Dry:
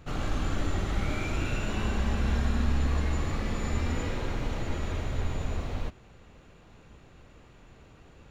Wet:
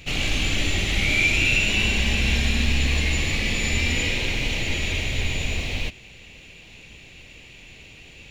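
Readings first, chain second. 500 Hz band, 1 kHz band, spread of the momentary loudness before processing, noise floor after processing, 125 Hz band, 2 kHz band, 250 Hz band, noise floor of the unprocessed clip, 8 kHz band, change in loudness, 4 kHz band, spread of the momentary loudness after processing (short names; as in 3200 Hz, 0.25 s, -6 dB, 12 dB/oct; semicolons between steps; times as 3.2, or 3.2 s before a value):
+3.0 dB, 0.0 dB, 6 LU, -46 dBFS, +4.0 dB, +16.5 dB, +4.0 dB, -55 dBFS, n/a, +9.5 dB, +18.5 dB, 8 LU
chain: resonant high shelf 1800 Hz +10.5 dB, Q 3; gain +4 dB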